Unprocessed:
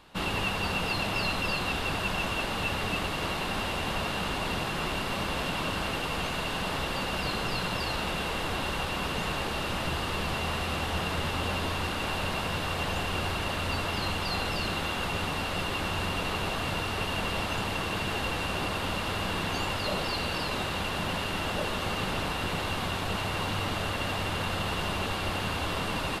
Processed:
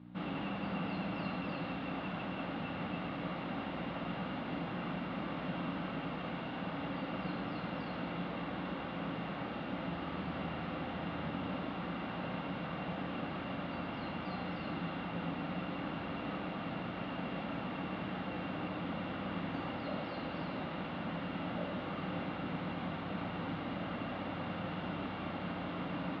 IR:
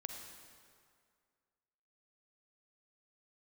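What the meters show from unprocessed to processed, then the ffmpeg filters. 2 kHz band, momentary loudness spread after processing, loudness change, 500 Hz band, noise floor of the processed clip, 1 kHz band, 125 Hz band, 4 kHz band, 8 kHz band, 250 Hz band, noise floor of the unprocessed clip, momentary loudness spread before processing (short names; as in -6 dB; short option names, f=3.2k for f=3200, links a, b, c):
-12.5 dB, 1 LU, -9.5 dB, -8.0 dB, -42 dBFS, -9.5 dB, -8.0 dB, -17.0 dB, under -35 dB, -2.5 dB, -32 dBFS, 2 LU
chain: -filter_complex "[0:a]aeval=exprs='val(0)+0.0112*(sin(2*PI*60*n/s)+sin(2*PI*2*60*n/s)/2+sin(2*PI*3*60*n/s)/3+sin(2*PI*4*60*n/s)/4+sin(2*PI*5*60*n/s)/5)':c=same,highpass=170,equalizer=f=170:t=q:w=4:g=7,equalizer=f=270:t=q:w=4:g=7,equalizer=f=410:t=q:w=4:g=-7,equalizer=f=1k:t=q:w=4:g=-7,equalizer=f=1.7k:t=q:w=4:g=-6,equalizer=f=2.7k:t=q:w=4:g=-8,lowpass=f=2.8k:w=0.5412,lowpass=f=2.8k:w=1.3066[a];[1:a]atrim=start_sample=2205,asetrate=74970,aresample=44100[b];[a][b]afir=irnorm=-1:irlink=0,volume=1dB"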